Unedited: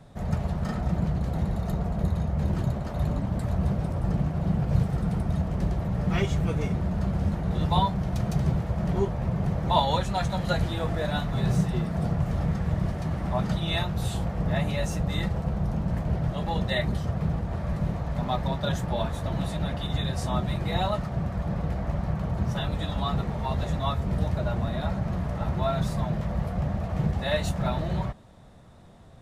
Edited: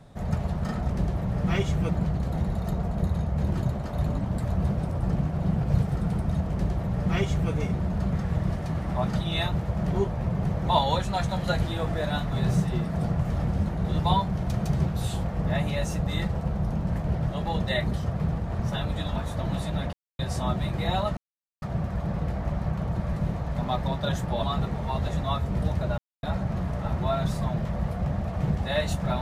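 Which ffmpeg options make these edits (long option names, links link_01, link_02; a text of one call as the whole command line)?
ffmpeg -i in.wav -filter_complex "[0:a]asplit=16[link_01][link_02][link_03][link_04][link_05][link_06][link_07][link_08][link_09][link_10][link_11][link_12][link_13][link_14][link_15][link_16];[link_01]atrim=end=0.902[link_17];[link_02]atrim=start=5.528:end=6.522[link_18];[link_03]atrim=start=0.898:end=7.142[link_19];[link_04]atrim=start=12.488:end=13.882[link_20];[link_05]atrim=start=8.528:end=12.492[link_21];[link_06]atrim=start=7.138:end=8.532[link_22];[link_07]atrim=start=13.878:end=17.602[link_23];[link_08]atrim=start=22.418:end=22.992[link_24];[link_09]atrim=start=19.028:end=19.8,asetpts=PTS-STARTPTS,afade=type=out:start_time=0.768:duration=0.004:curve=hsin[link_25];[link_10]atrim=start=19.8:end=20.06,asetpts=PTS-STARTPTS,volume=0[link_26];[link_11]atrim=start=20.06:end=21.04,asetpts=PTS-STARTPTS,afade=type=in:duration=0.004:curve=hsin,afade=type=out:start_time=0.976:duration=0.004:curve=hsin,apad=pad_dur=0.45[link_27];[link_12]atrim=start=21.04:end=22.422,asetpts=PTS-STARTPTS,afade=type=in:duration=0.004:curve=hsin[link_28];[link_13]atrim=start=17.598:end=19.032[link_29];[link_14]atrim=start=22.988:end=24.54,asetpts=PTS-STARTPTS,afade=type=out:start_time=1.548:duration=0.004:curve=hsin[link_30];[link_15]atrim=start=24.54:end=24.79,asetpts=PTS-STARTPTS,volume=0[link_31];[link_16]atrim=start=24.79,asetpts=PTS-STARTPTS,afade=type=in:duration=0.004:curve=hsin[link_32];[link_17][link_18]acrossfade=duration=0.004:curve1=hsin:curve2=hsin[link_33];[link_33][link_19]acrossfade=duration=0.004:curve1=hsin:curve2=hsin[link_34];[link_34][link_20]acrossfade=duration=0.004:curve1=hsin:curve2=hsin[link_35];[link_35][link_21]acrossfade=duration=0.004:curve1=hsin:curve2=hsin[link_36];[link_36][link_22]acrossfade=duration=0.004:curve1=hsin:curve2=hsin[link_37];[link_37][link_23]acrossfade=duration=0.004:curve1=hsin:curve2=hsin[link_38];[link_38][link_24]acrossfade=duration=0.004:curve1=hsin:curve2=hsin[link_39];[link_25][link_26][link_27][link_28]concat=n=4:v=0:a=1[link_40];[link_39][link_40]acrossfade=duration=0.004:curve1=hsin:curve2=hsin[link_41];[link_41][link_29]acrossfade=duration=0.004:curve1=hsin:curve2=hsin[link_42];[link_30][link_31][link_32]concat=n=3:v=0:a=1[link_43];[link_42][link_43]acrossfade=duration=0.004:curve1=hsin:curve2=hsin" out.wav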